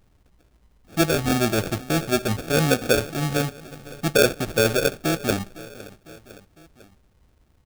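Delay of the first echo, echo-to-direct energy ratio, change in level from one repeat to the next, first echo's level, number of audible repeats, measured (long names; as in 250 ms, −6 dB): 505 ms, −17.5 dB, −4.5 dB, −19.0 dB, 3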